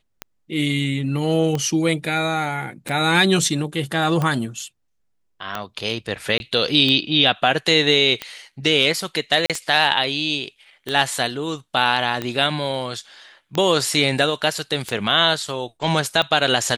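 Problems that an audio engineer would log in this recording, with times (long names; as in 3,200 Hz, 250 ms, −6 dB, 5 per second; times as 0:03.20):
scratch tick 45 rpm −11 dBFS
0:06.38–0:06.40: drop-out 21 ms
0:09.46–0:09.50: drop-out 37 ms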